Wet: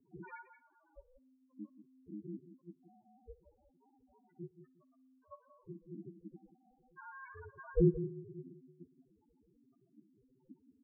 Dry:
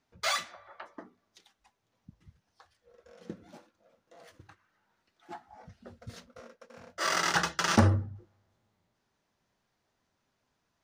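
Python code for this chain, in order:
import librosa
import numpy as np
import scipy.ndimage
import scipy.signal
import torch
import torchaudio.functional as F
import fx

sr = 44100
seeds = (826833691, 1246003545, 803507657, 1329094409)

y = fx.delta_mod(x, sr, bps=32000, step_db=-36.0)
y = fx.low_shelf(y, sr, hz=65.0, db=10.0)
y = fx.level_steps(y, sr, step_db=20)
y = fx.echo_feedback(y, sr, ms=177, feedback_pct=23, wet_db=-11.5)
y = fx.spec_topn(y, sr, count=1)
y = y * np.sin(2.0 * np.pi * 260.0 * np.arange(len(y)) / sr)
y = fx.echo_banded(y, sr, ms=60, feedback_pct=63, hz=1100.0, wet_db=-22)
y = y * librosa.db_to_amplitude(5.5)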